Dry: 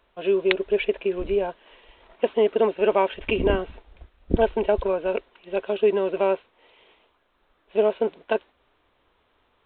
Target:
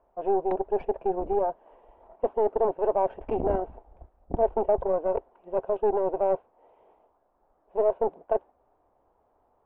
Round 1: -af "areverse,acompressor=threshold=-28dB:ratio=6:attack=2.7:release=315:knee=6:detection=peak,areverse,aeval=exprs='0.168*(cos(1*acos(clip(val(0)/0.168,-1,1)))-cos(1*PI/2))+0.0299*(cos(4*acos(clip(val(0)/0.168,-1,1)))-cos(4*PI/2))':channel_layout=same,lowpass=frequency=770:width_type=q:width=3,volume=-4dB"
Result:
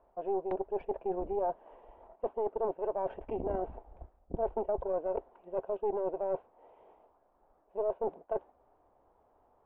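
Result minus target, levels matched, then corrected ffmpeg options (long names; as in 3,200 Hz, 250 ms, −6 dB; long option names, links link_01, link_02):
downward compressor: peak gain reduction +8.5 dB
-af "areverse,acompressor=threshold=-18dB:ratio=6:attack=2.7:release=315:knee=6:detection=peak,areverse,aeval=exprs='0.168*(cos(1*acos(clip(val(0)/0.168,-1,1)))-cos(1*PI/2))+0.0299*(cos(4*acos(clip(val(0)/0.168,-1,1)))-cos(4*PI/2))':channel_layout=same,lowpass=frequency=770:width_type=q:width=3,volume=-4dB"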